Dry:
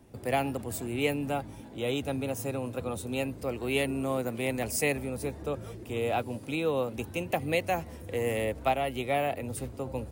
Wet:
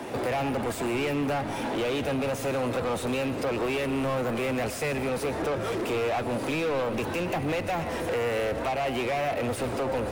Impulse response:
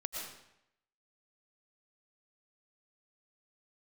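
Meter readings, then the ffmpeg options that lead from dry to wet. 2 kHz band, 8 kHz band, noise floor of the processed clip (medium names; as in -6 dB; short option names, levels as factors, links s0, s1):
+3.0 dB, -1.5 dB, -34 dBFS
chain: -filter_complex "[0:a]lowshelf=f=170:g=-8.5,acrossover=split=160[s0][s1];[s1]acompressor=threshold=0.00891:ratio=6[s2];[s0][s2]amix=inputs=2:normalize=0,asplit=2[s3][s4];[s4]highpass=f=720:p=1,volume=28.2,asoftclip=type=tanh:threshold=0.0335[s5];[s3][s5]amix=inputs=2:normalize=0,lowpass=f=2000:p=1,volume=0.501,asplit=2[s6][s7];[1:a]atrim=start_sample=2205[s8];[s7][s8]afir=irnorm=-1:irlink=0,volume=0.376[s9];[s6][s9]amix=inputs=2:normalize=0,volume=2.11"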